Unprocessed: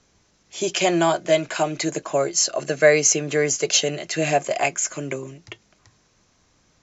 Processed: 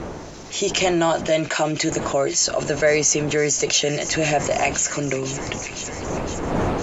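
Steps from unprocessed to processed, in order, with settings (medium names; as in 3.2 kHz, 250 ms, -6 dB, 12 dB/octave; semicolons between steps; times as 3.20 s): wind noise 590 Hz -36 dBFS; feedback echo behind a high-pass 508 ms, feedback 74%, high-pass 1.9 kHz, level -19 dB; level flattener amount 50%; trim -4 dB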